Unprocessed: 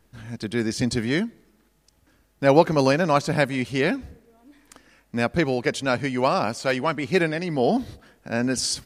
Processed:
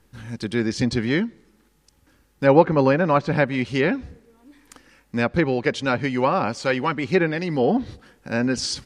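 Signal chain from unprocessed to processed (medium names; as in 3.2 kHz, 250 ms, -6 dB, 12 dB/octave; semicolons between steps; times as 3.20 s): low-pass that closes with the level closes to 2.2 kHz, closed at -16 dBFS; Butterworth band-stop 660 Hz, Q 6.6; trim +2 dB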